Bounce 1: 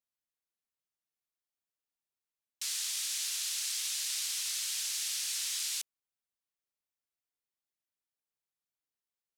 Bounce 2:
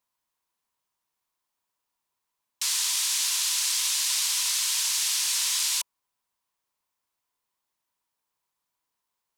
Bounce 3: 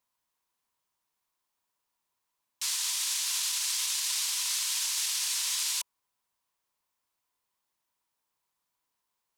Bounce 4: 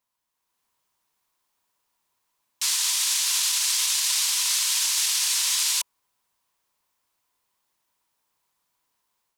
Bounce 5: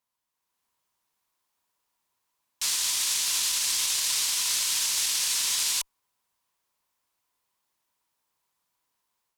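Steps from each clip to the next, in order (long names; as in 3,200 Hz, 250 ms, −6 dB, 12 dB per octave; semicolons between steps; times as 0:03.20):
parametric band 990 Hz +13.5 dB 0.37 octaves; level +9 dB
brickwall limiter −21 dBFS, peak gain reduction 7.5 dB
automatic gain control gain up to 7 dB
harmonic generator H 2 −18 dB, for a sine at −13.5 dBFS; level −3 dB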